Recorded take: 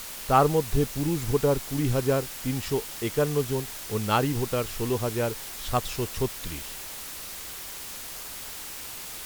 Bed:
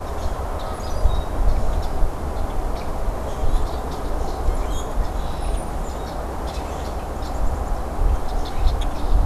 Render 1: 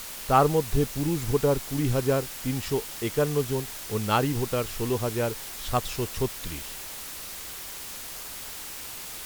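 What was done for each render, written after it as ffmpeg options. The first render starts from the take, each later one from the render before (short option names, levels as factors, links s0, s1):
-af anull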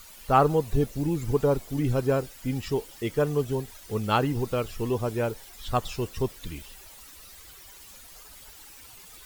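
-af "afftdn=nr=13:nf=-39"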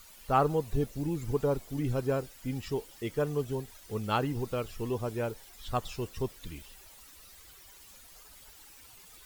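-af "volume=0.531"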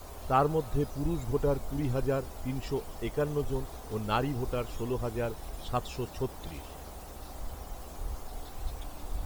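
-filter_complex "[1:a]volume=0.126[s0];[0:a][s0]amix=inputs=2:normalize=0"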